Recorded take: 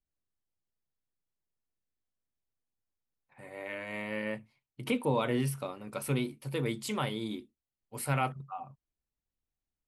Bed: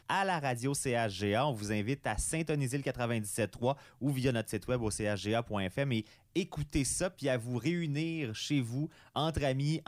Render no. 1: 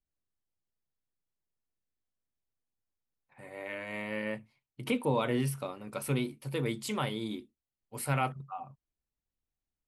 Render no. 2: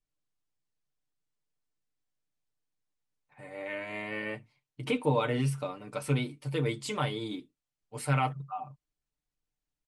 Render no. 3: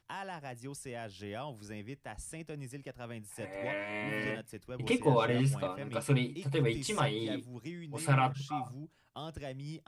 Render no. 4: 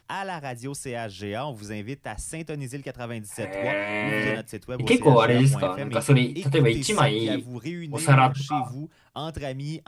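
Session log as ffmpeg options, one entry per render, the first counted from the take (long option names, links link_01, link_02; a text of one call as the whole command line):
ffmpeg -i in.wav -af anull out.wav
ffmpeg -i in.wav -af "lowpass=frequency=9300:width=0.5412,lowpass=frequency=9300:width=1.3066,aecho=1:1:6.7:0.61" out.wav
ffmpeg -i in.wav -i bed.wav -filter_complex "[1:a]volume=-11dB[link_01];[0:a][link_01]amix=inputs=2:normalize=0" out.wav
ffmpeg -i in.wav -af "volume=10.5dB" out.wav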